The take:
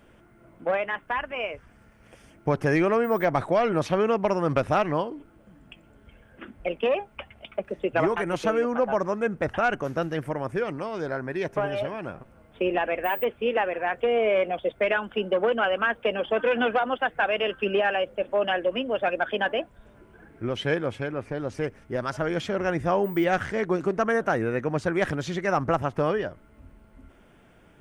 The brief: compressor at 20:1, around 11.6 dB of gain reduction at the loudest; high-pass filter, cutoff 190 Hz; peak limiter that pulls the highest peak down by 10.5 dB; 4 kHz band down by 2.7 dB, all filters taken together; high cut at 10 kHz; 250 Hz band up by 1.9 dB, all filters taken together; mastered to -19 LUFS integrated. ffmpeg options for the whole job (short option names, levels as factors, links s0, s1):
-af "highpass=190,lowpass=10000,equalizer=f=250:t=o:g=4.5,equalizer=f=4000:t=o:g=-4.5,acompressor=threshold=0.0355:ratio=20,volume=8.91,alimiter=limit=0.355:level=0:latency=1"